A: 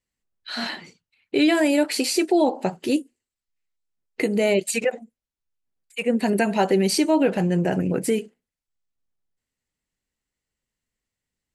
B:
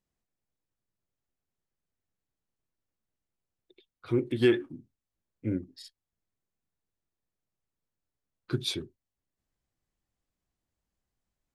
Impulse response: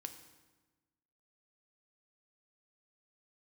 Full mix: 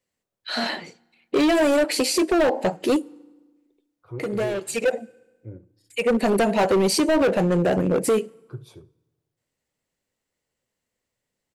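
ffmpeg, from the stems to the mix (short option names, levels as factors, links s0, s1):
-filter_complex "[0:a]highpass=110,equalizer=f=550:t=o:w=1:g=8,volume=6.31,asoftclip=hard,volume=0.158,volume=1.26,asplit=2[s0][s1];[s1]volume=0.188[s2];[1:a]equalizer=f=125:t=o:w=1:g=8,equalizer=f=250:t=o:w=1:g=-4,equalizer=f=500:t=o:w=1:g=6,equalizer=f=1000:t=o:w=1:g=8,equalizer=f=2000:t=o:w=1:g=-9,equalizer=f=4000:t=o:w=1:g=-12,equalizer=f=8000:t=o:w=1:g=-4,equalizer=f=240:t=o:w=0.83:g=-8,volume=0.282,asplit=4[s3][s4][s5][s6];[s4]volume=0.335[s7];[s5]volume=0.15[s8];[s6]apad=whole_len=509215[s9];[s0][s9]sidechaincompress=threshold=0.00447:ratio=4:attack=24:release=390[s10];[2:a]atrim=start_sample=2205[s11];[s2][s7]amix=inputs=2:normalize=0[s12];[s12][s11]afir=irnorm=-1:irlink=0[s13];[s8]aecho=0:1:72:1[s14];[s10][s3][s13][s14]amix=inputs=4:normalize=0,alimiter=limit=0.178:level=0:latency=1:release=147"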